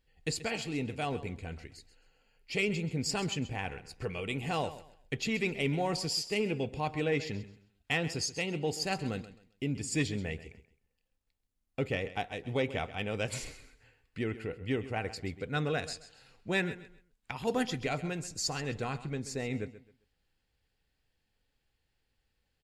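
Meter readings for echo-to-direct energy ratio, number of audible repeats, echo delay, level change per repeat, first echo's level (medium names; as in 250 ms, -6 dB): -14.5 dB, 2, 132 ms, -11.5 dB, -15.0 dB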